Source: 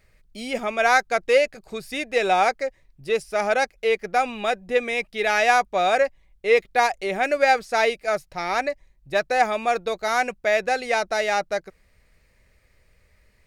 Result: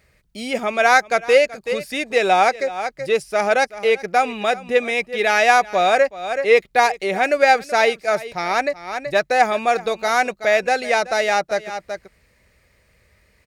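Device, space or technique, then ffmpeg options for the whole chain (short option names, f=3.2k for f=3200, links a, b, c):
ducked delay: -filter_complex "[0:a]asplit=3[a][b][c];[b]adelay=378,volume=-7dB[d];[c]apad=whole_len=610362[e];[d][e]sidechaincompress=threshold=-35dB:ratio=4:attack=5.2:release=205[f];[a][f]amix=inputs=2:normalize=0,highpass=58,volume=4dB"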